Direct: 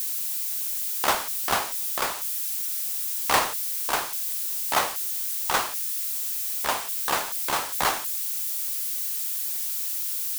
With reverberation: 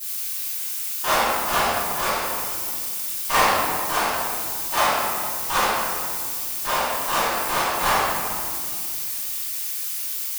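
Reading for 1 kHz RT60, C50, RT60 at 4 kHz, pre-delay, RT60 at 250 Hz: 1.9 s, -3.5 dB, 1.2 s, 3 ms, 3.3 s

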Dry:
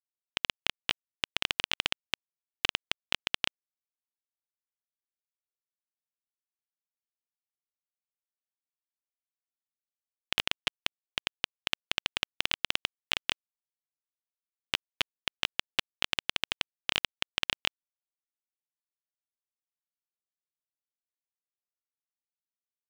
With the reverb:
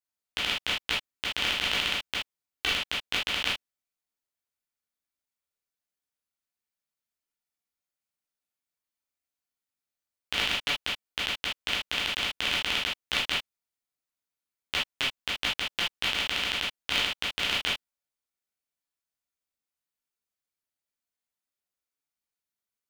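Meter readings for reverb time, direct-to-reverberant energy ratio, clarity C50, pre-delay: no single decay rate, -7.0 dB, 4.5 dB, 7 ms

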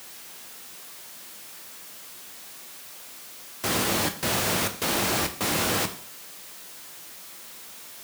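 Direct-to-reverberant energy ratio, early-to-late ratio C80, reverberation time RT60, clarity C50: 7.0 dB, 16.0 dB, 0.50 s, 12.5 dB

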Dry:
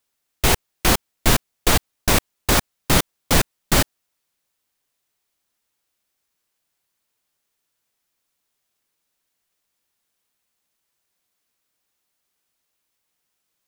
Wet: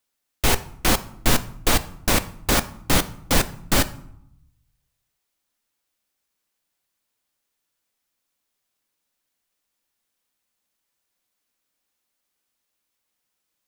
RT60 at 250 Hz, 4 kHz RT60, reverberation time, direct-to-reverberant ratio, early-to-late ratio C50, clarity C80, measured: 1.0 s, 0.45 s, 0.75 s, 11.5 dB, 17.0 dB, 20.0 dB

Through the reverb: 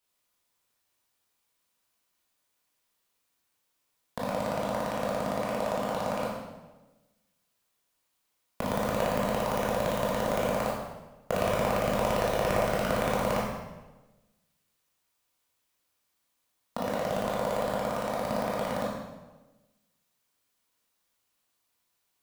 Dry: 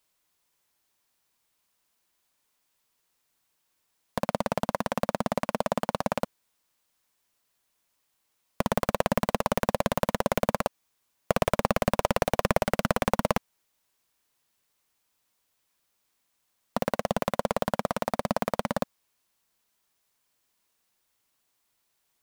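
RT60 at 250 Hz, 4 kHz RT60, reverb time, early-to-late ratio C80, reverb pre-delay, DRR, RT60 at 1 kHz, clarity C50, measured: 1.3 s, 0.95 s, 1.1 s, 3.5 dB, 16 ms, -5.0 dB, 1.1 s, 1.0 dB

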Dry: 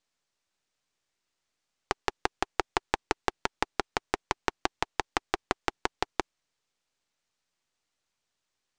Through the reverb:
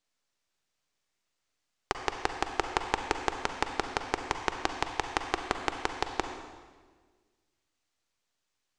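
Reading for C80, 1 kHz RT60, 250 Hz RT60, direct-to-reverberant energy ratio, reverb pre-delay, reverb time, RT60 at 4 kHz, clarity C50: 7.5 dB, 1.4 s, 1.8 s, 5.5 dB, 37 ms, 1.5 s, 1.3 s, 6.0 dB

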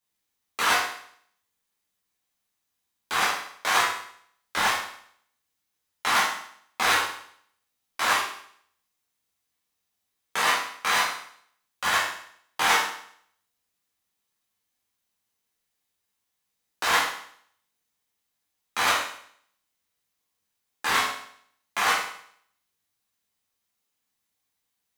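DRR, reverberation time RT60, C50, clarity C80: -8.0 dB, 0.60 s, 3.0 dB, 7.0 dB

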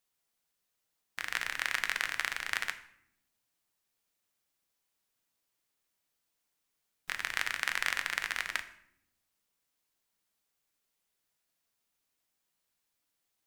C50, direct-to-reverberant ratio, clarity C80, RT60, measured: 13.0 dB, 8.5 dB, 16.0 dB, 0.75 s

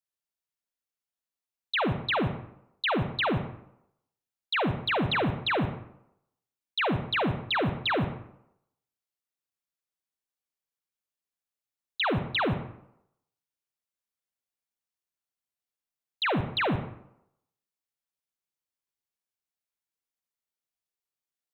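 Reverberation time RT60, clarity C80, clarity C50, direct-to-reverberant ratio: 0.80 s, 12.0 dB, 9.0 dB, 7.5 dB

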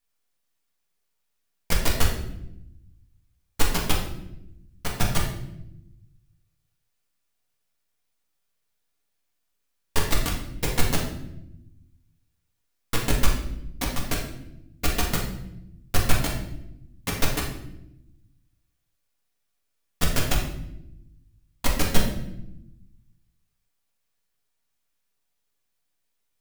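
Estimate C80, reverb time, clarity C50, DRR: 8.0 dB, 0.85 s, 4.5 dB, -2.5 dB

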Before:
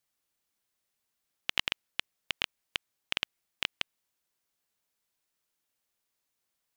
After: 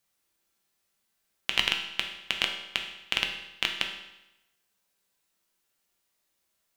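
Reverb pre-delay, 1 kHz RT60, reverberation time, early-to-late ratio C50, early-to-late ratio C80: 5 ms, 0.90 s, 0.90 s, 6.5 dB, 9.0 dB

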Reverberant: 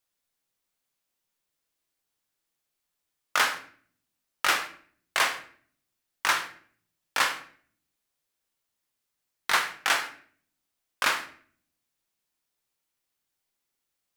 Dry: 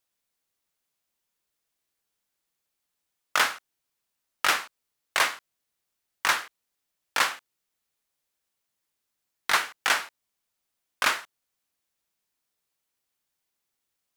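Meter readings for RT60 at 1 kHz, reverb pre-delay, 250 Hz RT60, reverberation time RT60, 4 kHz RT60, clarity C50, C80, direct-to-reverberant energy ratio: 0.45 s, 8 ms, 0.80 s, 0.50 s, 0.40 s, 11.0 dB, 15.0 dB, 6.0 dB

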